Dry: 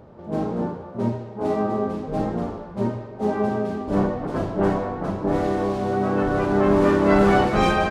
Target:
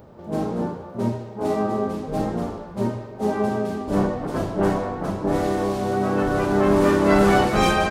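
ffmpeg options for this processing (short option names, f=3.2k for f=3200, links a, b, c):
-af "aemphasis=mode=production:type=50kf"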